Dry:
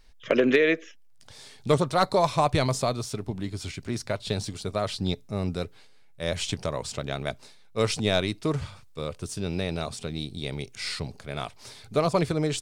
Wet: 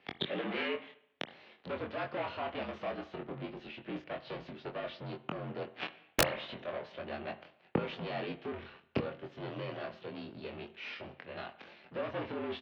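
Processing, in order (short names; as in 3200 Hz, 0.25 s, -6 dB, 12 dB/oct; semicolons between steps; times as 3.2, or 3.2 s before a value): bell 980 Hz -7.5 dB 0.33 oct; sample leveller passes 3; in parallel at -0.5 dB: level quantiser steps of 22 dB; on the sum: sample leveller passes 3; flipped gate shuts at -19 dBFS, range -39 dB; mistuned SSB -51 Hz 220–2800 Hz; formant shift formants +3 st; doubler 23 ms -4 dB; reverb, pre-delay 36 ms, DRR 13.5 dB; wrapped overs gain 27 dB; gain +11.5 dB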